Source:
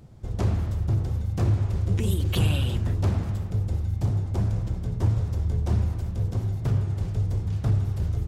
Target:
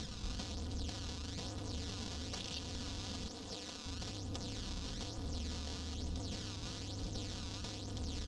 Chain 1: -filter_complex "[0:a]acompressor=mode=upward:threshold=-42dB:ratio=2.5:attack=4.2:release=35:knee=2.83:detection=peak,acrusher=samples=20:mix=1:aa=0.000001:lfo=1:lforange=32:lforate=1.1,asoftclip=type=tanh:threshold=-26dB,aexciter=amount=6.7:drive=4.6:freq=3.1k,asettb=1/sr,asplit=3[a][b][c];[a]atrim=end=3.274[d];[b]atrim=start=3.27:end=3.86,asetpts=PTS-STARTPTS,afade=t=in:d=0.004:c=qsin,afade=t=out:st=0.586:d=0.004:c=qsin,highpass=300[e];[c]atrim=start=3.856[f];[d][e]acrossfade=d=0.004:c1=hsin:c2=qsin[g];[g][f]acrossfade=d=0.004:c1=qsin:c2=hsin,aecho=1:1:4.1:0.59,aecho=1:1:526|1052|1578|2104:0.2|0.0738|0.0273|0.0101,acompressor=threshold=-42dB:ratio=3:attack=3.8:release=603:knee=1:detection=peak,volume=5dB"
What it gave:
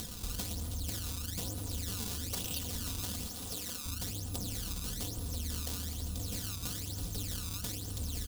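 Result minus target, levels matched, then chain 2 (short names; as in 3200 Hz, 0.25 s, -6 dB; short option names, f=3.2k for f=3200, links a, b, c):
8000 Hz band +4.0 dB; soft clip: distortion -5 dB
-filter_complex "[0:a]acompressor=mode=upward:threshold=-42dB:ratio=2.5:attack=4.2:release=35:knee=2.83:detection=peak,acrusher=samples=20:mix=1:aa=0.000001:lfo=1:lforange=32:lforate=1.1,asoftclip=type=tanh:threshold=-36.5dB,aexciter=amount=6.7:drive=4.6:freq=3.1k,asettb=1/sr,asplit=3[a][b][c];[a]atrim=end=3.274[d];[b]atrim=start=3.27:end=3.86,asetpts=PTS-STARTPTS,afade=t=in:d=0.004:c=qsin,afade=t=out:st=0.586:d=0.004:c=qsin,highpass=300[e];[c]atrim=start=3.856[f];[d][e]acrossfade=d=0.004:c1=hsin:c2=qsin[g];[g][f]acrossfade=d=0.004:c1=qsin:c2=hsin,aecho=1:1:4.1:0.59,aecho=1:1:526|1052|1578|2104:0.2|0.0738|0.0273|0.0101,acompressor=threshold=-42dB:ratio=3:attack=3.8:release=603:knee=1:detection=peak,lowpass=f=5.9k:w=0.5412,lowpass=f=5.9k:w=1.3066,volume=5dB"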